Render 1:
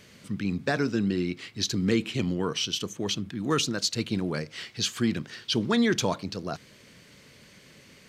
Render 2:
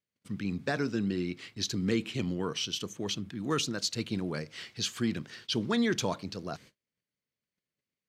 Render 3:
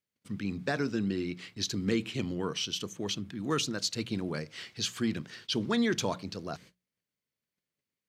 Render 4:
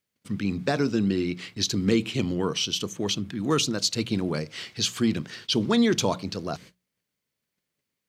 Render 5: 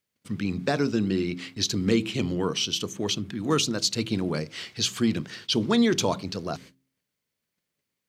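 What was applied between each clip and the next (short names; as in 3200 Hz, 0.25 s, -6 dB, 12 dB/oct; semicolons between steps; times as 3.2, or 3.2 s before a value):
gate -47 dBFS, range -36 dB; gain -4.5 dB
notches 60/120/180 Hz
dynamic EQ 1700 Hz, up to -6 dB, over -49 dBFS, Q 2.3; gain +7 dB
de-hum 66.32 Hz, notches 6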